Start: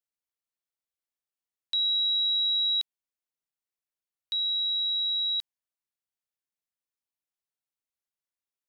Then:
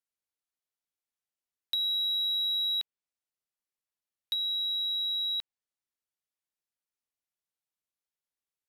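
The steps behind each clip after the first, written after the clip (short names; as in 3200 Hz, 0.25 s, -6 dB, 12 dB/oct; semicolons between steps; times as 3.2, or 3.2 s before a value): treble ducked by the level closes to 2900 Hz, closed at -28.5 dBFS; sample leveller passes 1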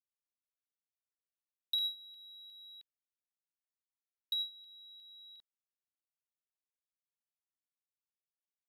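LFO notch saw down 2.8 Hz 880–2800 Hz; gate with hold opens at -26 dBFS; gain -2.5 dB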